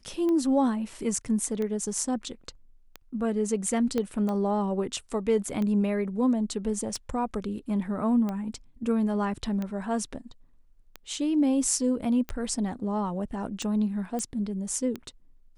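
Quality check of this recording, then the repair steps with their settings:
tick 45 rpm -20 dBFS
3.98 pop -16 dBFS
14.19 pop -20 dBFS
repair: de-click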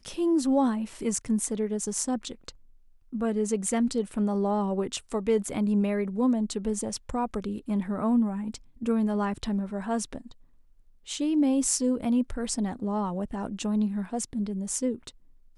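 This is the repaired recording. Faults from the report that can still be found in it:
3.98 pop

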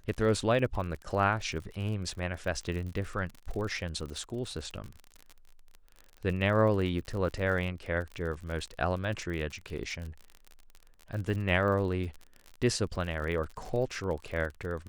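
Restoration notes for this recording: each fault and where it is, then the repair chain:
crackle 47/s -37 dBFS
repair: de-click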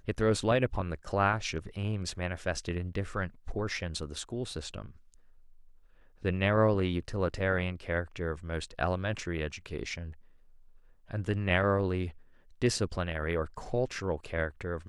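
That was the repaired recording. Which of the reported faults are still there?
none

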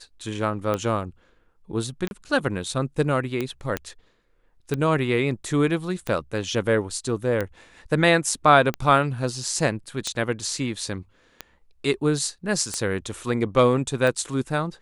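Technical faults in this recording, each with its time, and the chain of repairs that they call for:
tick 45 rpm -13 dBFS
2.08–2.11 gap 31 ms
3.77 pop -12 dBFS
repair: de-click; interpolate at 2.08, 31 ms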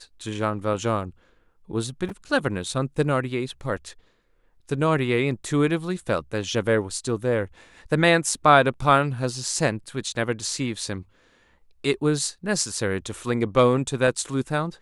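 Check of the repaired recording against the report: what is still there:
3.77 pop

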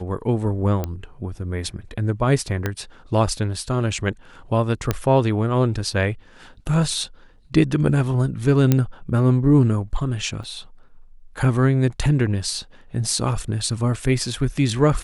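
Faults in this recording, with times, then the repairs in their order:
0.84 pop -12 dBFS
2.66 pop -9 dBFS
4.91 pop -6 dBFS
8.72 pop -4 dBFS
10.43–10.44 gap 6.1 ms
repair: de-click; interpolate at 10.43, 6.1 ms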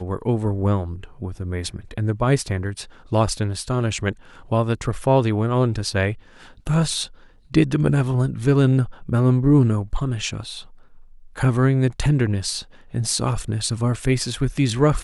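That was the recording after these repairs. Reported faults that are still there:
2.66 pop

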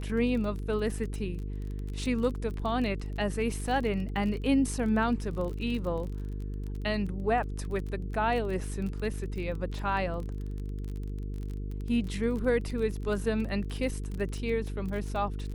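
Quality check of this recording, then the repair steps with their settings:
buzz 50 Hz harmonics 9 -35 dBFS
crackle 26/s -35 dBFS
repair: de-click; de-hum 50 Hz, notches 9

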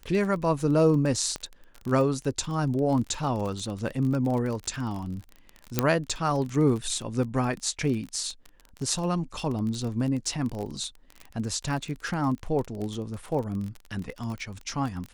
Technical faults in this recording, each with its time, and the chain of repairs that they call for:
crackle 29/s -31 dBFS
1.36 pop -18 dBFS
5.79 pop -6 dBFS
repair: de-click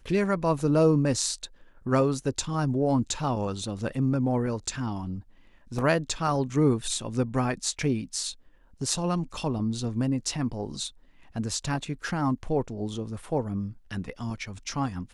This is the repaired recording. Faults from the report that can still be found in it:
5.79 pop

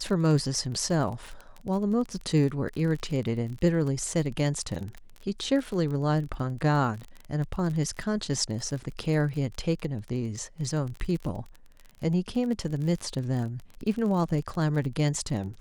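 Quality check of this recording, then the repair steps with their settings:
crackle 33/s -33 dBFS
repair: de-click

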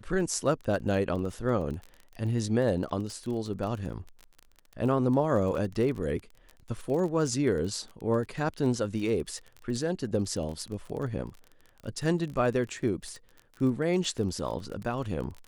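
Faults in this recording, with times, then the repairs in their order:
crackle 27/s -35 dBFS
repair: de-click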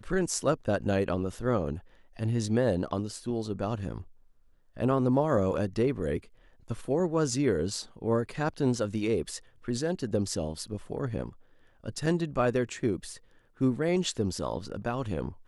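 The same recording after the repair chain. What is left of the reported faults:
none

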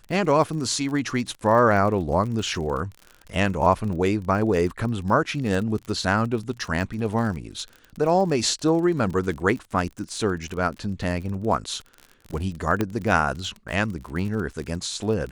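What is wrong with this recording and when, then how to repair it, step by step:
crackle 41/s -31 dBFS
12.81 pop -10 dBFS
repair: de-click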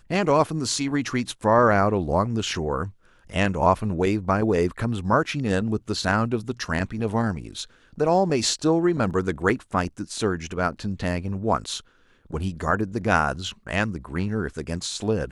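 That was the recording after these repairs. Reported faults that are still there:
12.81 pop

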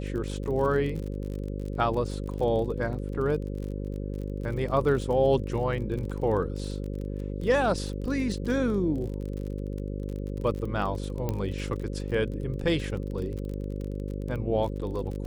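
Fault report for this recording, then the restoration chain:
buzz 50 Hz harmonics 11 -33 dBFS
crackle 37/s -34 dBFS
11.29 pop -16 dBFS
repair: de-click; de-hum 50 Hz, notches 11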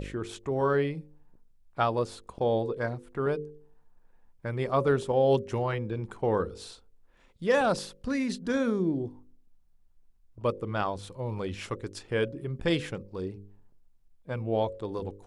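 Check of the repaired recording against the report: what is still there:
none

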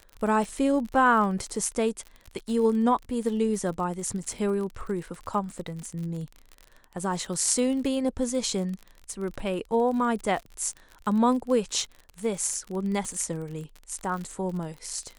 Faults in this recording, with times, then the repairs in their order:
crackle 43/s -33 dBFS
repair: de-click

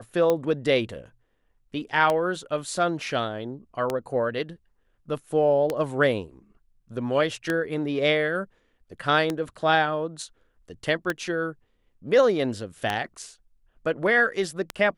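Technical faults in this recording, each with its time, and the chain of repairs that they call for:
tick 33 1/3 rpm -11 dBFS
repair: de-click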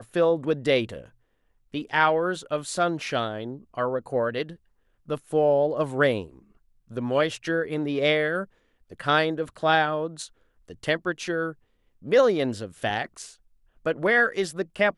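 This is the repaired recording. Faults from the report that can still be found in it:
none

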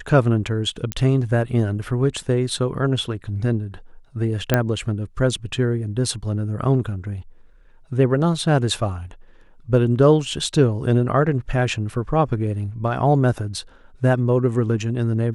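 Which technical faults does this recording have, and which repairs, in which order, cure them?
0.92 pop -7 dBFS
4.54 pop -3 dBFS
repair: de-click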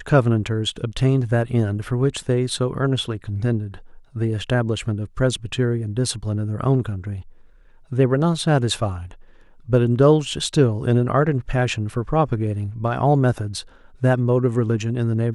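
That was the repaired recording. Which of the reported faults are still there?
none

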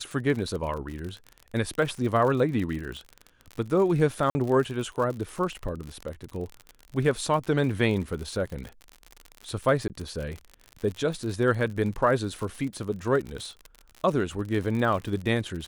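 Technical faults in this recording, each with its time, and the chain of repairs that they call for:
crackle 56/s -32 dBFS
4.3–4.35 gap 50 ms
9.88–9.9 gap 18 ms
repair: de-click; interpolate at 4.3, 50 ms; interpolate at 9.88, 18 ms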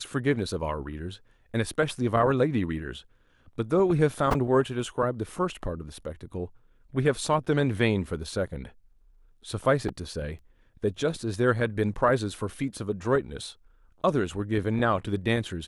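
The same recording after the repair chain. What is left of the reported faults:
none

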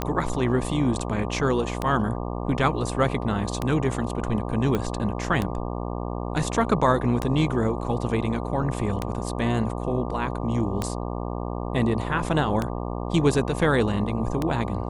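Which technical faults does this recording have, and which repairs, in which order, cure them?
buzz 60 Hz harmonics 20 -30 dBFS
tick 33 1/3 rpm -11 dBFS
4.75 pop -13 dBFS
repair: de-click; de-hum 60 Hz, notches 20

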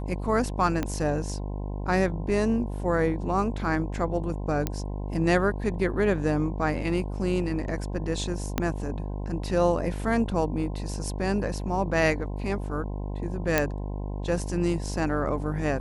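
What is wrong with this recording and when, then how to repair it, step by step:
buzz 50 Hz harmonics 21 -32 dBFS
0.83 pop -14 dBFS
4.67 pop -12 dBFS
8.58 pop -10 dBFS
13.58 pop -6 dBFS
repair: de-click; de-hum 50 Hz, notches 21

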